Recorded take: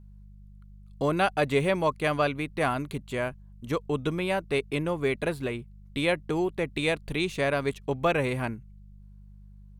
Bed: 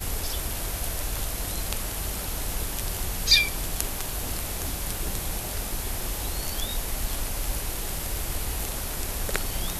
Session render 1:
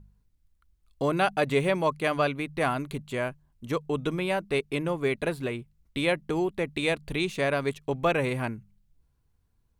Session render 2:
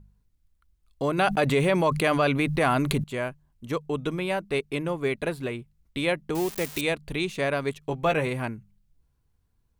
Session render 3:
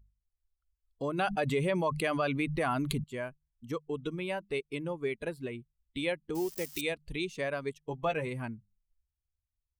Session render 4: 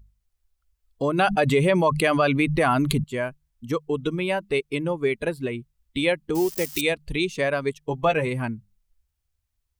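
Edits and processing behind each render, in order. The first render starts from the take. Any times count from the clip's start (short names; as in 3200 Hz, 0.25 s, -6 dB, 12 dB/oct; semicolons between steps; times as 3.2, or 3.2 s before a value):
de-hum 50 Hz, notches 4
1.18–3.04 fast leveller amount 70%; 6.35–6.81 switching spikes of -21.5 dBFS; 7.81–8.27 doubler 13 ms -7 dB
per-bin expansion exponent 1.5; compressor 1.5:1, threshold -36 dBFS, peak gain reduction 6 dB
gain +10 dB; limiter -3 dBFS, peak gain reduction 1.5 dB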